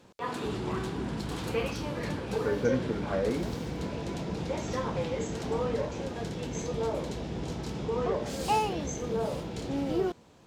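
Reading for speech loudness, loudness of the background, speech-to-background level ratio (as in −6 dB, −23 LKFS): −32.0 LKFS, −33.0 LKFS, 1.0 dB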